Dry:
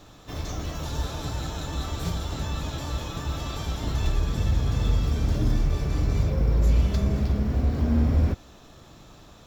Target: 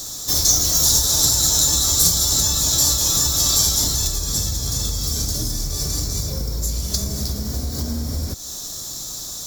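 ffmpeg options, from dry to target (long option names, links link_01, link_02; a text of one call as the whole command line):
ffmpeg -i in.wav -af "acompressor=threshold=-28dB:ratio=6,aexciter=amount=12.6:drive=8:freq=4200,volume=5.5dB" out.wav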